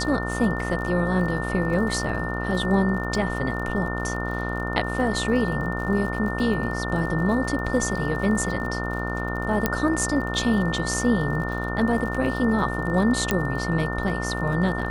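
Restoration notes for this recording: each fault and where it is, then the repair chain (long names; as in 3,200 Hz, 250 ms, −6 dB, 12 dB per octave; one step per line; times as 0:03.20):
mains buzz 60 Hz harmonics 24 −29 dBFS
surface crackle 48 per second −33 dBFS
whistle 1,800 Hz −31 dBFS
0:09.66: click −6 dBFS
0:13.31: click −7 dBFS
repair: click removal
notch filter 1,800 Hz, Q 30
hum removal 60 Hz, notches 24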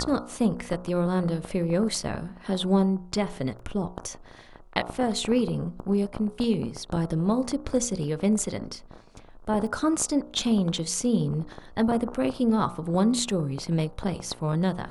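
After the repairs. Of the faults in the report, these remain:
0:09.66: click
0:13.31: click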